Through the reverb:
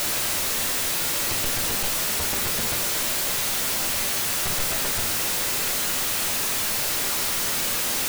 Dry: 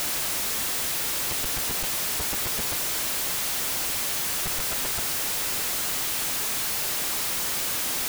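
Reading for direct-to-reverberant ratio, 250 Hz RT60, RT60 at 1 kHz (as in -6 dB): 3.0 dB, 0.70 s, 0.45 s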